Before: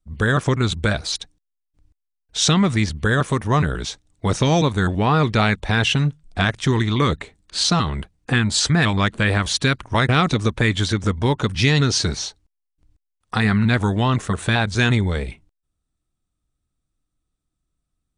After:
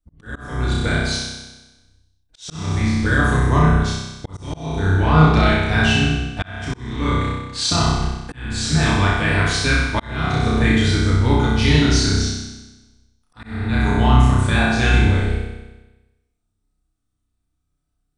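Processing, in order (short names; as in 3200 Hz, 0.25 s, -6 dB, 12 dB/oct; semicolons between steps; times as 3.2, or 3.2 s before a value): octaver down 1 oct, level -3 dB; on a send: flutter echo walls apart 5.4 m, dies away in 1.1 s; on the sum: FDN reverb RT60 0.59 s, low-frequency decay 1.3×, high-frequency decay 0.55×, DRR 1 dB; auto swell 0.563 s; gain -5.5 dB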